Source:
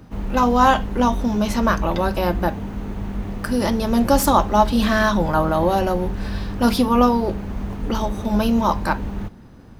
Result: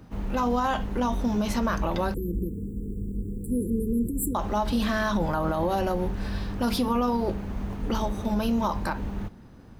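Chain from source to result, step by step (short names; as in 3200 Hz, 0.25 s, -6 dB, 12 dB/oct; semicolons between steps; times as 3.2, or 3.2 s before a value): limiter -12.5 dBFS, peak gain reduction 10 dB; 2.14–4.35 brick-wall FIR band-stop 500–7200 Hz; gain -4.5 dB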